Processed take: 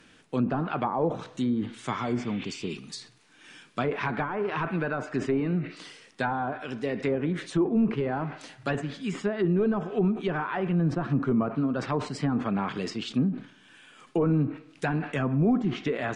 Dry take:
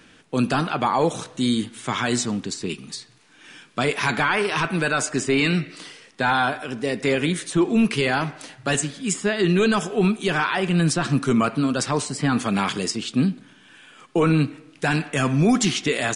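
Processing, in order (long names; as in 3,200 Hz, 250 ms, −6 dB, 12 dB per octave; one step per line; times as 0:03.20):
healed spectral selection 0:01.94–0:02.70, 1,400–4,300 Hz both
treble cut that deepens with the level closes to 820 Hz, closed at −16.5 dBFS
level that may fall only so fast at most 140 dB per second
level −5 dB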